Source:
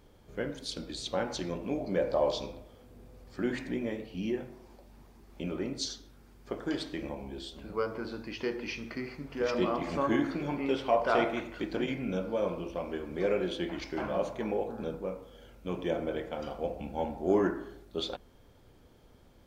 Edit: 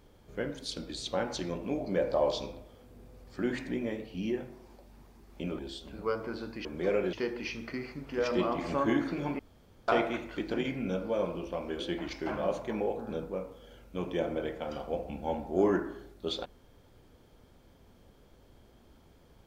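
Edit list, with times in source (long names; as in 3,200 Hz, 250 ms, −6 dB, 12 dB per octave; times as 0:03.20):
0:05.59–0:07.30: remove
0:10.62–0:11.11: fill with room tone
0:13.02–0:13.50: move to 0:08.36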